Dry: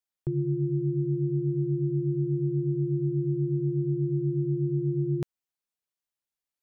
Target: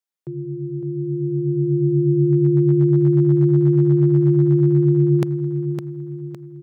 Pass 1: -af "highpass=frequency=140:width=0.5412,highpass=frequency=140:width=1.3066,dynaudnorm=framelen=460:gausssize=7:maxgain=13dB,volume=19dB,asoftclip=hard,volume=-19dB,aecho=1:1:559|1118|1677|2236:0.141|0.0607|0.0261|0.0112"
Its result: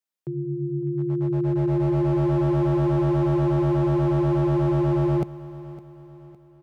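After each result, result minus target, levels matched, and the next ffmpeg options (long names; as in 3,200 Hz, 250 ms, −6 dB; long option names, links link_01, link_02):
gain into a clipping stage and back: distortion +28 dB; echo-to-direct −9.5 dB
-af "highpass=frequency=140:width=0.5412,highpass=frequency=140:width=1.3066,dynaudnorm=framelen=460:gausssize=7:maxgain=13dB,volume=9dB,asoftclip=hard,volume=-9dB,aecho=1:1:559|1118|1677|2236:0.141|0.0607|0.0261|0.0112"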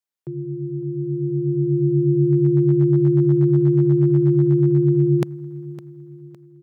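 echo-to-direct −9.5 dB
-af "highpass=frequency=140:width=0.5412,highpass=frequency=140:width=1.3066,dynaudnorm=framelen=460:gausssize=7:maxgain=13dB,volume=9dB,asoftclip=hard,volume=-9dB,aecho=1:1:559|1118|1677|2236|2795:0.422|0.181|0.078|0.0335|0.0144"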